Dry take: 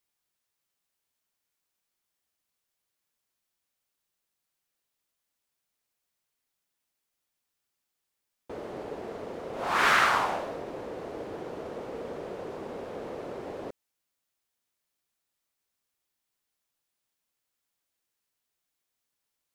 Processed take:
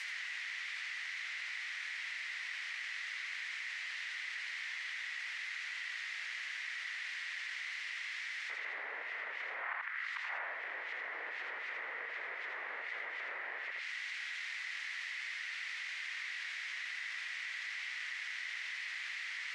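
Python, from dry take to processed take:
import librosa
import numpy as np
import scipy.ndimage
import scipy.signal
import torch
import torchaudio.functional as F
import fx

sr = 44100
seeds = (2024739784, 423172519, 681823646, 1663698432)

p1 = fx.step_gate(x, sr, bpm=158, pattern='xx.xxxx.', floor_db=-12.0, edge_ms=4.5)
p2 = fx.gate_flip(p1, sr, shuts_db=-16.0, range_db=-26)
p3 = fx.quant_dither(p2, sr, seeds[0], bits=6, dither='triangular')
p4 = p2 + (p3 * librosa.db_to_amplitude(-8.0))
p5 = fx.env_lowpass_down(p4, sr, base_hz=1400.0, full_db=-31.5)
p6 = fx.ladder_bandpass(p5, sr, hz=2100.0, resonance_pct=75)
p7 = p6 + fx.echo_single(p6, sr, ms=82, db=-4.5, dry=0)
p8 = fx.env_flatten(p7, sr, amount_pct=70)
y = p8 * librosa.db_to_amplitude(5.5)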